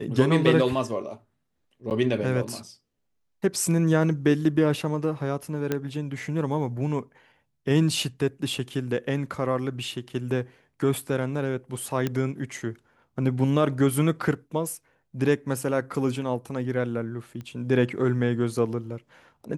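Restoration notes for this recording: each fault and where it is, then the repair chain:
0:01.90–0:01.91: drop-out 8.8 ms
0:05.72: click −12 dBFS
0:12.07: click −13 dBFS
0:17.41: click −26 dBFS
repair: click removal
repair the gap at 0:01.90, 8.8 ms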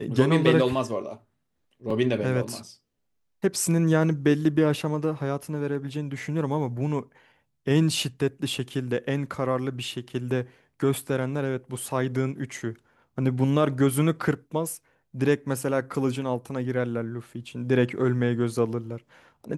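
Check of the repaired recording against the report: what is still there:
0:05.72: click

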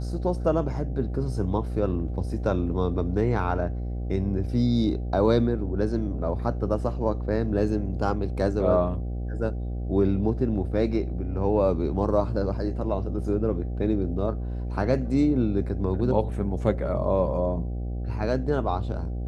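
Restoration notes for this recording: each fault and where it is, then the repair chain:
mains buzz 60 Hz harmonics 13 −30 dBFS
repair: hum removal 60 Hz, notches 13

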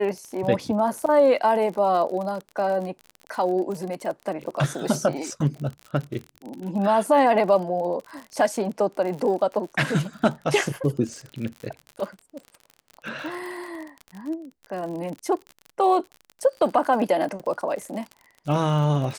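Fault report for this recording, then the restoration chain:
surface crackle 49 per second −31 dBFS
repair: click removal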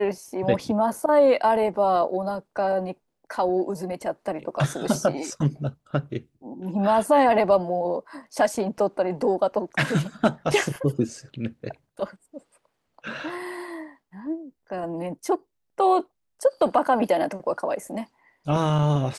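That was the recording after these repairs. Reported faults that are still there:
none of them is left

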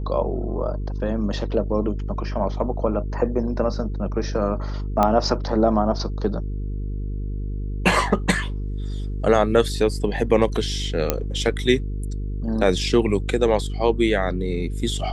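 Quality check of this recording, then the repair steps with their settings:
mains buzz 50 Hz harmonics 9 −27 dBFS
0:05.03: click −7 dBFS
0:11.10: click −4 dBFS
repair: click removal
hum removal 50 Hz, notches 9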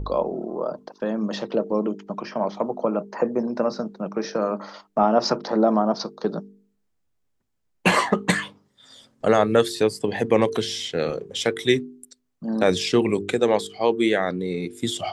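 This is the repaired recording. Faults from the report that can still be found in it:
none of them is left

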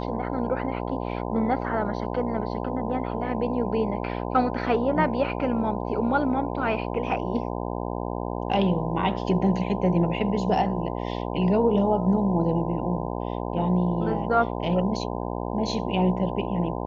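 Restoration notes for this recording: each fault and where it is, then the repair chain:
mains buzz 60 Hz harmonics 17 −30 dBFS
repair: hum removal 60 Hz, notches 17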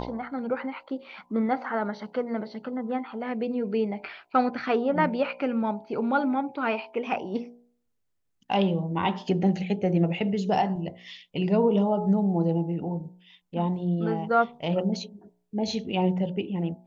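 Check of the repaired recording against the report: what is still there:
none of them is left

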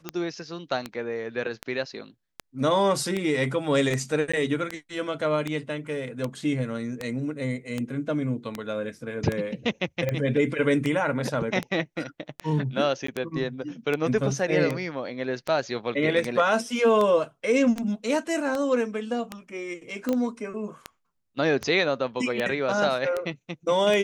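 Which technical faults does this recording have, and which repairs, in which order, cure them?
scratch tick 78 rpm −14 dBFS
0:04.32–0:04.33: drop-out 15 ms
0:13.07–0:13.08: drop-out 14 ms
0:20.13: click −16 dBFS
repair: click removal
repair the gap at 0:04.32, 15 ms
repair the gap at 0:13.07, 14 ms

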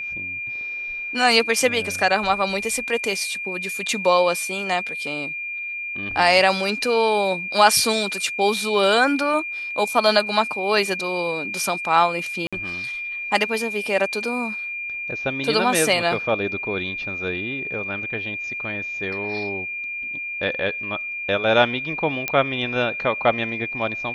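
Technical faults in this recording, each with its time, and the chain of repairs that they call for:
whistle 2,400 Hz −27 dBFS
0:12.47–0:12.53: drop-out 56 ms
0:22.28: click −7 dBFS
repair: click removal
notch filter 2,400 Hz, Q 30
repair the gap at 0:12.47, 56 ms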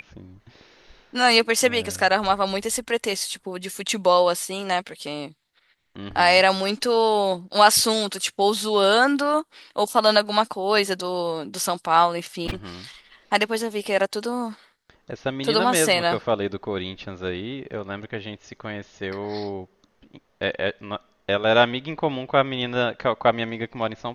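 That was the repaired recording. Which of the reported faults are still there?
none of them is left

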